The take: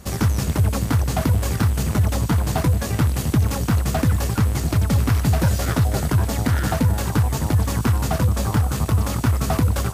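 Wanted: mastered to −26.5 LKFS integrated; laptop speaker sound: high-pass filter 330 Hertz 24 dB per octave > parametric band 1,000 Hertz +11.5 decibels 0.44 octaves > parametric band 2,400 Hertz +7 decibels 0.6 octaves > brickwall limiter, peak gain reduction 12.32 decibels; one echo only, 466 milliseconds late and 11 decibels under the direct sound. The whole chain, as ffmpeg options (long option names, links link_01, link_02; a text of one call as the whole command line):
ffmpeg -i in.wav -af "highpass=frequency=330:width=0.5412,highpass=frequency=330:width=1.3066,equalizer=frequency=1000:width_type=o:width=0.44:gain=11.5,equalizer=frequency=2400:width_type=o:width=0.6:gain=7,aecho=1:1:466:0.282,volume=3.5dB,alimiter=limit=-17dB:level=0:latency=1" out.wav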